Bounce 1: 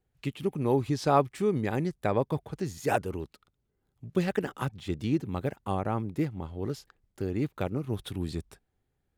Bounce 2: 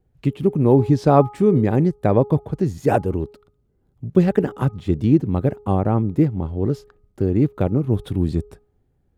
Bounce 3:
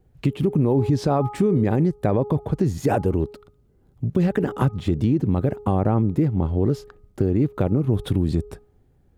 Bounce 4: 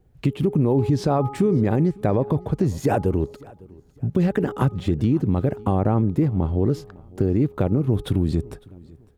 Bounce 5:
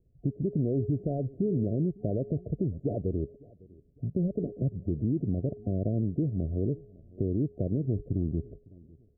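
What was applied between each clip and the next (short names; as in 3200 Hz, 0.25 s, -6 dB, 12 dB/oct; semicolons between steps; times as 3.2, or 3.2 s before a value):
tilt shelf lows +7.5 dB; de-hum 416.1 Hz, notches 3; gain +6 dB
limiter -13 dBFS, peak gain reduction 11.5 dB; compressor 2:1, threshold -25 dBFS, peak gain reduction 5 dB; gain +6 dB
feedback echo 0.555 s, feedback 33%, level -23.5 dB
median filter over 41 samples; air absorption 340 m; FFT band-reject 720–6700 Hz; gain -8 dB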